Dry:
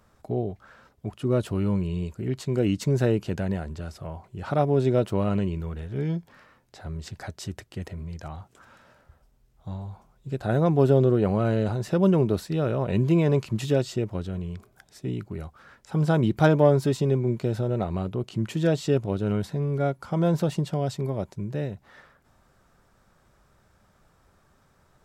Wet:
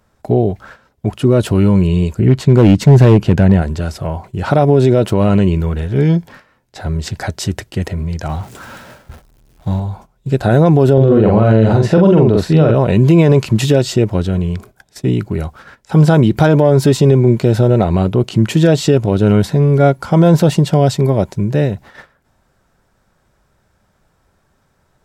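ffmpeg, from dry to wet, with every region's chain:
ffmpeg -i in.wav -filter_complex "[0:a]asettb=1/sr,asplit=3[link_01][link_02][link_03];[link_01]atrim=end=2.194[link_04];[link_02]atrim=start=2.19:end=3.62,asetpts=PTS-STARTPTS,afade=type=in:duration=0.004:curve=qsin,afade=type=out:start_time=1.426:duration=0.004:curve=qsin,bass=frequency=250:gain=5,treble=frequency=4000:gain=-7,asoftclip=type=hard:threshold=-16.5dB[link_05];[link_03]atrim=start=3.616[link_06];[link_04][link_05]acrossfade=duration=0.004:curve1=hsin:curve2=qsin[link_07];[link_07][link_06]acrossfade=duration=0.004:curve1=qsin:curve2=hsin,asettb=1/sr,asplit=3[link_08][link_09][link_10];[link_08]atrim=end=8.294[link_11];[link_09]atrim=start=8.29:end=9.8,asetpts=PTS-STARTPTS,afade=type=in:duration=0.004:curve=qsin,afade=type=out:start_time=1.506:duration=0.004:curve=qsin,aeval=exprs='val(0)+0.5*0.00316*sgn(val(0))':channel_layout=same,equalizer=frequency=190:width=0.66:gain=2.5[link_12];[link_10]atrim=start=9.796[link_13];[link_11][link_12]acrossfade=duration=0.004:curve1=hsin:curve2=qsin[link_14];[link_14][link_13]acrossfade=duration=0.004:curve1=qsin:curve2=hsin,asettb=1/sr,asplit=3[link_15][link_16][link_17];[link_15]atrim=end=10.934[link_18];[link_16]atrim=start=10.93:end=12.75,asetpts=PTS-STARTPTS,afade=type=in:duration=0.004:curve=qsin,afade=type=out:start_time=1.816:duration=0.004:curve=qsin,aemphasis=mode=reproduction:type=50fm,asplit=2[link_19][link_20];[link_20]adelay=45,volume=-3dB[link_21];[link_19][link_21]amix=inputs=2:normalize=0,atrim=end_sample=80262[link_22];[link_17]atrim=start=12.746[link_23];[link_18][link_22]acrossfade=duration=0.004:curve1=hsin:curve2=qsin[link_24];[link_24][link_23]acrossfade=duration=0.004:curve1=qsin:curve2=hsin,agate=range=-13dB:threshold=-50dB:ratio=16:detection=peak,bandreject=frequency=1200:width=12,alimiter=level_in=16.5dB:limit=-1dB:release=50:level=0:latency=1,volume=-1dB" out.wav

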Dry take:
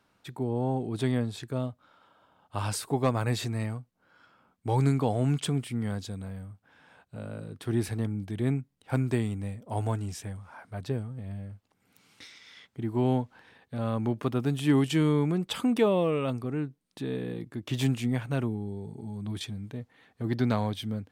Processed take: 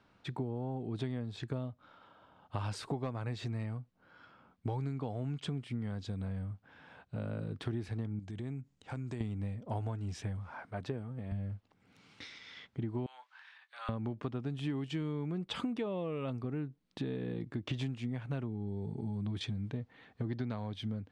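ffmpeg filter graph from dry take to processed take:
ffmpeg -i in.wav -filter_complex "[0:a]asettb=1/sr,asplit=3[link_01][link_02][link_03];[link_01]atrim=end=8.194[link_04];[link_02]atrim=start=8.19:end=9.21,asetpts=PTS-STARTPTS,afade=type=in:duration=0.004:curve=qsin,afade=type=out:start_time=1.016:duration=0.004:curve=qsin,equalizer=frequency=7100:width_type=o:width=0.65:gain=12.5,acompressor=threshold=-44dB:ratio=3:attack=3.2:release=140:knee=1:detection=peak[link_05];[link_03]atrim=start=9.206[link_06];[link_04][link_05]acrossfade=duration=0.004:curve1=hsin:curve2=qsin[link_07];[link_07][link_06]acrossfade=duration=0.004:curve1=qsin:curve2=hsin,asettb=1/sr,asplit=3[link_08][link_09][link_10];[link_08]atrim=end=10.654[link_11];[link_09]atrim=start=10.65:end=11.32,asetpts=PTS-STARTPTS,afade=type=in:duration=0.004:curve=qsin,afade=type=out:start_time=0.666:duration=0.004:curve=qsin,highpass=frequency=260:poles=1,equalizer=frequency=4300:width=1.3:gain=-4.5[link_12];[link_10]atrim=start=11.316[link_13];[link_11][link_12]acrossfade=duration=0.004:curve1=hsin:curve2=qsin[link_14];[link_14][link_13]acrossfade=duration=0.004:curve1=qsin:curve2=hsin,asettb=1/sr,asplit=3[link_15][link_16][link_17];[link_15]atrim=end=13.064[link_18];[link_16]atrim=start=13.06:end=13.89,asetpts=PTS-STARTPTS,afade=type=in:duration=0.004:curve=qsin,afade=type=out:start_time=0.826:duration=0.004:curve=qsin,highpass=frequency=1100:width=0.5412,highpass=frequency=1100:width=1.3066,asplit=2[link_19][link_20];[link_20]adelay=24,volume=-12.5dB[link_21];[link_19][link_21]amix=inputs=2:normalize=0,atrim=end_sample=36603[link_22];[link_17]atrim=start=13.886[link_23];[link_18][link_22]acrossfade=duration=0.004:curve1=hsin:curve2=qsin[link_24];[link_24][link_23]acrossfade=duration=0.004:curve1=qsin:curve2=hsin,lowpass=4700,lowshelf=frequency=220:gain=4,acompressor=threshold=-34dB:ratio=12,volume=1dB" out.wav

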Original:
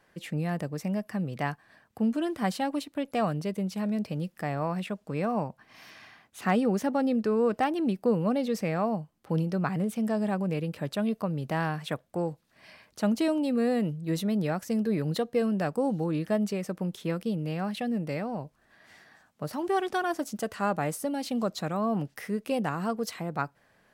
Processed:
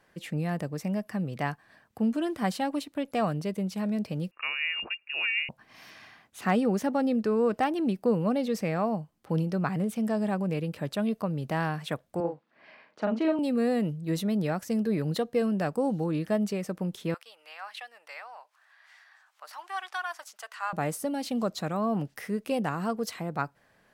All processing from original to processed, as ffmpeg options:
ffmpeg -i in.wav -filter_complex "[0:a]asettb=1/sr,asplit=3[link_01][link_02][link_03];[link_01]atrim=end=4.314[link_04];[link_02]atrim=start=4.31:end=5.49,asetpts=PTS-STARTPTS,afade=type=in:duration=0.004:curve=qsin,afade=type=out:start_time=1.176:duration=0.004:curve=qsin,highpass=170,lowpass=frequency=2600:width_type=q:width=0.5098,lowpass=frequency=2600:width_type=q:width=0.6013,lowpass=frequency=2600:width_type=q:width=0.9,lowpass=frequency=2600:width_type=q:width=2.563,afreqshift=-3000[link_05];[link_03]atrim=start=5.486[link_06];[link_04][link_05]acrossfade=duration=0.004:curve1=hsin:curve2=qsin[link_07];[link_07][link_06]acrossfade=duration=0.004:curve1=qsin:curve2=hsin,asettb=1/sr,asplit=3[link_08][link_09][link_10];[link_08]atrim=end=12.204[link_11];[link_09]atrim=start=12.2:end=13.39,asetpts=PTS-STARTPTS,afade=type=in:duration=0.004:curve=qsin,afade=type=out:start_time=1.186:duration=0.004:curve=qsin,highpass=260,lowpass=2400,asplit=2[link_12][link_13];[link_13]adelay=41,volume=-4dB[link_14];[link_12][link_14]amix=inputs=2:normalize=0,atrim=end_sample=52479[link_15];[link_10]atrim=start=13.386[link_16];[link_11][link_15]acrossfade=duration=0.004:curve1=hsin:curve2=qsin[link_17];[link_17][link_16]acrossfade=duration=0.004:curve1=qsin:curve2=hsin,asettb=1/sr,asplit=3[link_18][link_19][link_20];[link_18]atrim=end=17.144[link_21];[link_19]atrim=start=17.14:end=20.73,asetpts=PTS-STARTPTS,afade=type=in:duration=0.004:curve=qsin,afade=type=out:start_time=3.586:duration=0.004:curve=qsin,highpass=frequency=920:width=0.5412,highpass=frequency=920:width=1.3066,highshelf=frequency=6300:gain=-8.5,acompressor=mode=upward:threshold=-55dB:ratio=2.5:attack=3.2:release=140:knee=2.83:detection=peak[link_22];[link_20]atrim=start=20.726[link_23];[link_21][link_22]acrossfade=duration=0.004:curve1=hsin:curve2=qsin[link_24];[link_24][link_23]acrossfade=duration=0.004:curve1=qsin:curve2=hsin" out.wav

